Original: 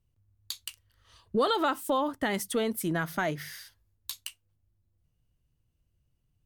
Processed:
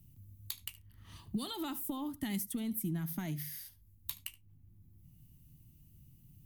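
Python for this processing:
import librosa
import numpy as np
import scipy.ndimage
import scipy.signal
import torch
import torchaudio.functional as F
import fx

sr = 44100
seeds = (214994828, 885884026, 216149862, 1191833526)

p1 = fx.curve_eq(x, sr, hz=(190.0, 330.0, 490.0, 840.0, 1500.0, 2100.0, 4700.0, 8700.0, 13000.0), db=(0, -8, -26, -16, -22, -14, -12, -6, 4))
p2 = p1 + fx.echo_single(p1, sr, ms=74, db=-19.5, dry=0)
y = fx.band_squash(p2, sr, depth_pct=70)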